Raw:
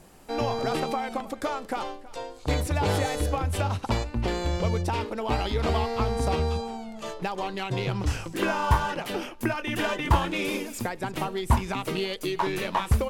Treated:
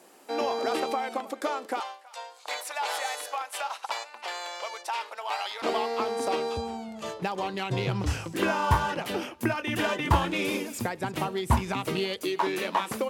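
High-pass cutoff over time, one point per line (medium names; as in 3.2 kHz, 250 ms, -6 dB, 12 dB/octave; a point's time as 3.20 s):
high-pass 24 dB/octave
270 Hz
from 1.80 s 710 Hz
from 5.62 s 270 Hz
from 6.57 s 69 Hz
from 12.23 s 210 Hz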